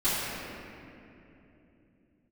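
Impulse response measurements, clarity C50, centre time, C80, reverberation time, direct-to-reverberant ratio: −4.0 dB, 190 ms, −2.0 dB, 3.0 s, −16.5 dB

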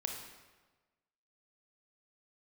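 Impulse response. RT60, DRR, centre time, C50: 1.3 s, 2.0 dB, 42 ms, 4.0 dB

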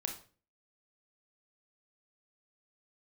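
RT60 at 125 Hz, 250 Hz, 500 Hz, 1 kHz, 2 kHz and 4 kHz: 0.55, 0.50, 0.45, 0.35, 0.35, 0.35 seconds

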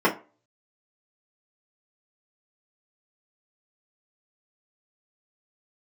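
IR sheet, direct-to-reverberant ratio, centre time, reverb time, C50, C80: −5.5 dB, 15 ms, 0.35 s, 13.5 dB, 19.5 dB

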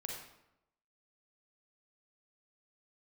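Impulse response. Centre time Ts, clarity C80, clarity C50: 50 ms, 4.5 dB, 1.5 dB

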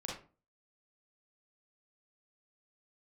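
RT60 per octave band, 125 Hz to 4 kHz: 0.45, 0.45, 0.40, 0.35, 0.30, 0.25 seconds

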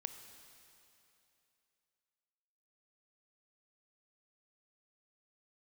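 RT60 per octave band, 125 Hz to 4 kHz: 2.8, 2.8, 3.0, 2.9, 2.9, 2.8 seconds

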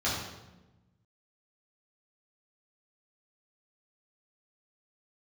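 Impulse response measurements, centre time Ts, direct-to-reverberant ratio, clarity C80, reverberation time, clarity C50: 60 ms, −9.0 dB, 4.0 dB, 1.1 s, 1.0 dB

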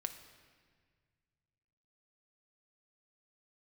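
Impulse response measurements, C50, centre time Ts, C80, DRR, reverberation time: 10.0 dB, 17 ms, 11.5 dB, 6.5 dB, 1.7 s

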